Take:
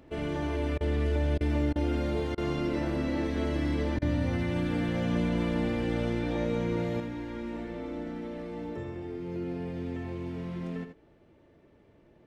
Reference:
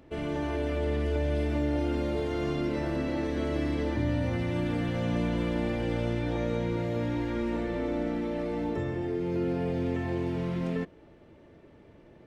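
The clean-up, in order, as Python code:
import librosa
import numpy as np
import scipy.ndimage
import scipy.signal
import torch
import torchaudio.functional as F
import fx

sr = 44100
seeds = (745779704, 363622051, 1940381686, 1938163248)

y = fx.fix_interpolate(x, sr, at_s=(0.78, 1.38, 1.73, 2.35, 3.99), length_ms=26.0)
y = fx.fix_echo_inverse(y, sr, delay_ms=81, level_db=-8.5)
y = fx.fix_level(y, sr, at_s=7.0, step_db=6.5)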